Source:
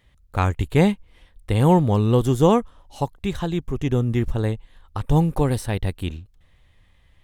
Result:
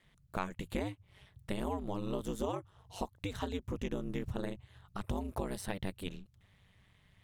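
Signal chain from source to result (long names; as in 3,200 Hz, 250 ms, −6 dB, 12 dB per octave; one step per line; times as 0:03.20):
low-shelf EQ 270 Hz −7 dB
downward compressor 6 to 1, threshold −29 dBFS, peak gain reduction 15 dB
ring modulation 97 Hz
level −1.5 dB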